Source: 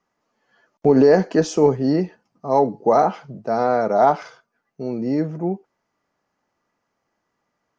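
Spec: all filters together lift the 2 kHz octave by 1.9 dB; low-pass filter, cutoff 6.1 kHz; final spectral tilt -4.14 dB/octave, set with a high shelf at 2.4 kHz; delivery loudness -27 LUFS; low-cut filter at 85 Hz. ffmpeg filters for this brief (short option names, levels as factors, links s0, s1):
-af "highpass=85,lowpass=6100,equalizer=f=2000:t=o:g=6,highshelf=f=2400:g=-8,volume=0.398"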